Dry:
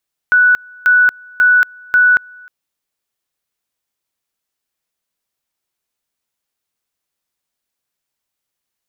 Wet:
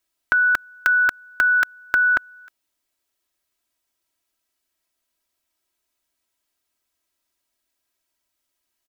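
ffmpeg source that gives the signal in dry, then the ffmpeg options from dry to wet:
-f lavfi -i "aevalsrc='pow(10,(-6.5-28.5*gte(mod(t,0.54),0.23))/20)*sin(2*PI*1480*t)':duration=2.16:sample_rate=44100"
-af "aecho=1:1:3.1:0.74"

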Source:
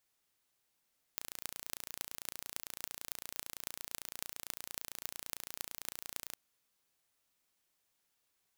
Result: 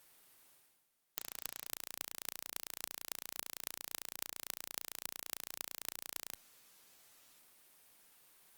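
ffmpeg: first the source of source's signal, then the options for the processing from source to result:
-f lavfi -i "aevalsrc='0.335*eq(mod(n,1526),0)*(0.5+0.5*eq(mod(n,12208),0))':duration=5.16:sample_rate=44100"
-af "equalizer=frequency=62:width=0.9:gain=-8,areverse,acompressor=mode=upward:threshold=-49dB:ratio=2.5,areverse" -ar 48000 -c:a libopus -b:a 32k

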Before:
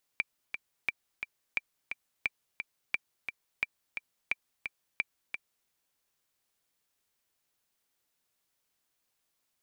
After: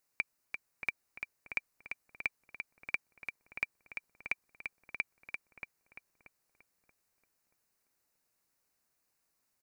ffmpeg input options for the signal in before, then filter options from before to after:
-f lavfi -i "aevalsrc='pow(10,(-15-7*gte(mod(t,2*60/175),60/175))/20)*sin(2*PI*2350*mod(t,60/175))*exp(-6.91*mod(t,60/175)/0.03)':duration=5.48:sample_rate=44100"
-filter_complex "[0:a]equalizer=frequency=3300:width_type=o:width=0.33:gain=-13,asplit=2[link_01][link_02];[link_02]adelay=631,lowpass=frequency=1400:poles=1,volume=-5.5dB,asplit=2[link_03][link_04];[link_04]adelay=631,lowpass=frequency=1400:poles=1,volume=0.38,asplit=2[link_05][link_06];[link_06]adelay=631,lowpass=frequency=1400:poles=1,volume=0.38,asplit=2[link_07][link_08];[link_08]adelay=631,lowpass=frequency=1400:poles=1,volume=0.38,asplit=2[link_09][link_10];[link_10]adelay=631,lowpass=frequency=1400:poles=1,volume=0.38[link_11];[link_03][link_05][link_07][link_09][link_11]amix=inputs=5:normalize=0[link_12];[link_01][link_12]amix=inputs=2:normalize=0"

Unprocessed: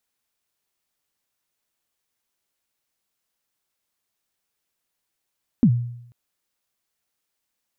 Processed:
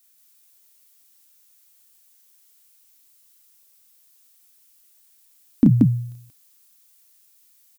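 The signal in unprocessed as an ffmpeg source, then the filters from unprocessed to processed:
-f lavfi -i "aevalsrc='0.355*pow(10,-3*t/0.74)*sin(2*PI*(270*0.07/log(120/270)*(exp(log(120/270)*min(t,0.07)/0.07)-1)+120*max(t-0.07,0)))':duration=0.49:sample_rate=44100"
-filter_complex "[0:a]crystalizer=i=5.5:c=0,equalizer=frequency=290:width_type=o:width=0.27:gain=9.5,asplit=2[link_01][link_02];[link_02]aecho=0:1:32.07|180.8:0.708|0.891[link_03];[link_01][link_03]amix=inputs=2:normalize=0"

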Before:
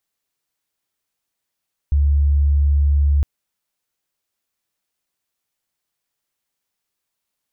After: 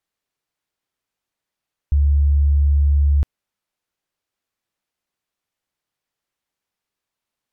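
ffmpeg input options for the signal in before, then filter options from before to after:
-f lavfi -i "aevalsrc='0.251*sin(2*PI*71.7*t)':duration=1.31:sample_rate=44100"
-af "aemphasis=mode=reproduction:type=cd"

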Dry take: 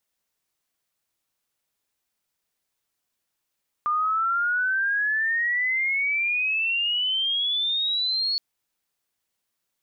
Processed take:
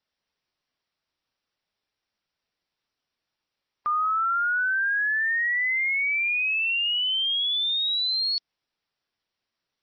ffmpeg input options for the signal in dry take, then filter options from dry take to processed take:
-f lavfi -i "aevalsrc='pow(10,(-20.5-1.5*t/4.52)/20)*sin(2*PI*1200*4.52/log(4400/1200)*(exp(log(4400/1200)*t/4.52)-1))':duration=4.52:sample_rate=44100"
-ar 22050 -c:a libmp3lame -b:a 24k

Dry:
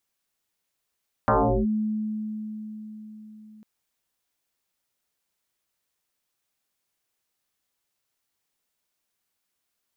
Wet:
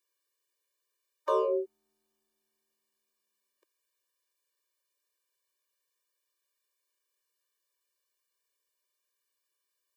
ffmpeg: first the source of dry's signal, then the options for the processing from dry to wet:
-f lavfi -i "aevalsrc='0.158*pow(10,-3*t/4.67)*sin(2*PI*215*t+7.4*clip(1-t/0.38,0,1)*sin(2*PI*0.77*215*t))':duration=2.35:sample_rate=44100"
-filter_complex "[0:a]asubboost=boost=9:cutoff=93,acrossover=split=190|430|940[link_01][link_02][link_03][link_04];[link_04]asoftclip=type=tanh:threshold=-34dB[link_05];[link_01][link_02][link_03][link_05]amix=inputs=4:normalize=0,afftfilt=real='re*eq(mod(floor(b*sr/1024/310),2),1)':imag='im*eq(mod(floor(b*sr/1024/310),2),1)':win_size=1024:overlap=0.75"

